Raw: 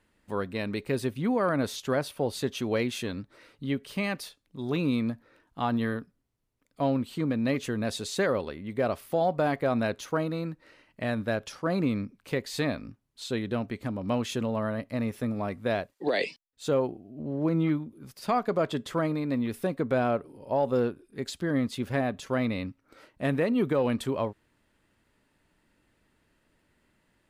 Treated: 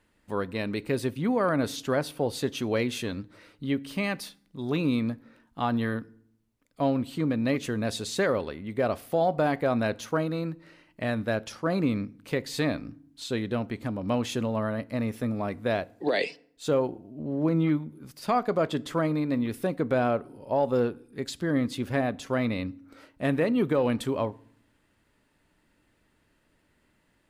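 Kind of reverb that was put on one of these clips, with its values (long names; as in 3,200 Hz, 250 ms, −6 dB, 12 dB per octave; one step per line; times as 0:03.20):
feedback delay network reverb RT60 0.62 s, low-frequency decay 1.5×, high-frequency decay 0.75×, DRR 19.5 dB
level +1 dB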